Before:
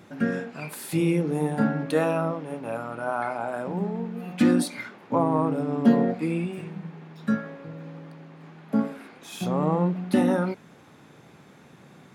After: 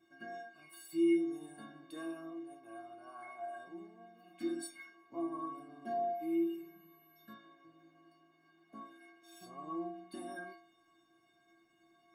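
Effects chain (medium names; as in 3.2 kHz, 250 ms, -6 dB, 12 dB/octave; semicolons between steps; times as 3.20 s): inharmonic resonator 330 Hz, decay 0.67 s, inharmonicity 0.03; 6.14–7.32 s: whistle 12 kHz -69 dBFS; trim +2.5 dB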